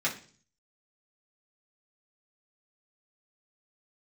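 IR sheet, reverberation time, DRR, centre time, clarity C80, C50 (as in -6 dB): 0.45 s, -6.0 dB, 16 ms, 16.0 dB, 11.0 dB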